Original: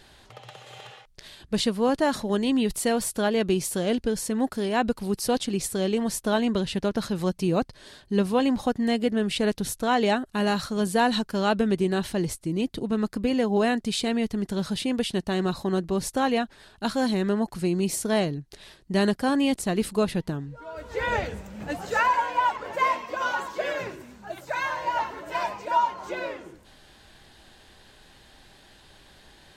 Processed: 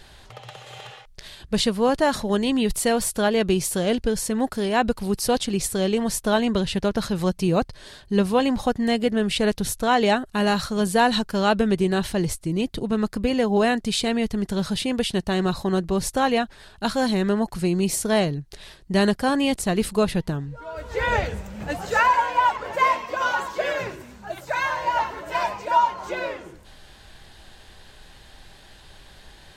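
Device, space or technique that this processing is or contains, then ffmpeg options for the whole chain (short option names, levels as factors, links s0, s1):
low shelf boost with a cut just above: -af "lowshelf=f=66:g=7.5,equalizer=f=280:t=o:w=0.84:g=-4,volume=1.58"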